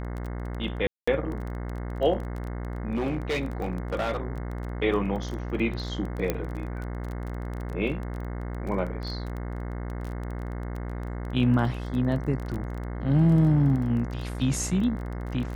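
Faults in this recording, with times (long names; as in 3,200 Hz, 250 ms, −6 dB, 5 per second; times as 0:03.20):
mains buzz 60 Hz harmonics 36 −33 dBFS
surface crackle 19 per second −32 dBFS
0:00.87–0:01.07: drop-out 205 ms
0:02.94–0:04.17: clipping −23.5 dBFS
0:06.30: click −12 dBFS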